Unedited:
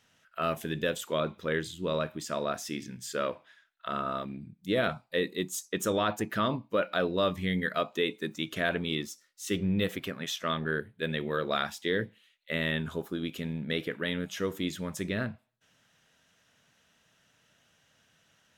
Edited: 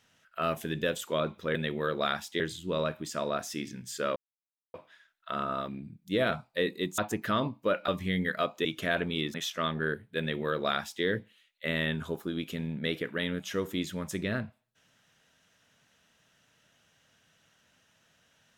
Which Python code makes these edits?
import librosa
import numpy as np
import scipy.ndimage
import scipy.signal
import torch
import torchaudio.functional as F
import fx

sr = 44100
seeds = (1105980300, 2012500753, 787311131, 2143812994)

y = fx.edit(x, sr, fx.insert_silence(at_s=3.31, length_s=0.58),
    fx.cut(start_s=5.55, length_s=0.51),
    fx.cut(start_s=6.96, length_s=0.29),
    fx.cut(start_s=8.02, length_s=0.37),
    fx.cut(start_s=9.08, length_s=1.12),
    fx.duplicate(start_s=11.05, length_s=0.85, to_s=1.55), tone=tone)